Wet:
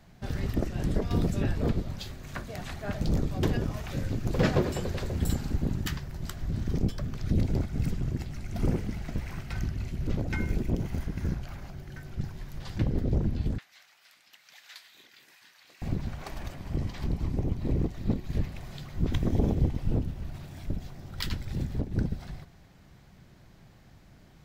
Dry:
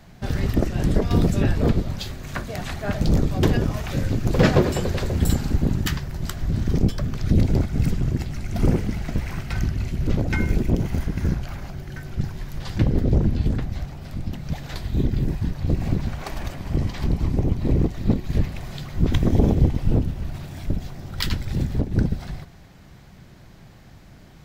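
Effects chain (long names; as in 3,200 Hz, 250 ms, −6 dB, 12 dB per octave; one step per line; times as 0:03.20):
0:13.58–0:15.82: Chebyshev high-pass filter 1,900 Hz, order 2
level −8 dB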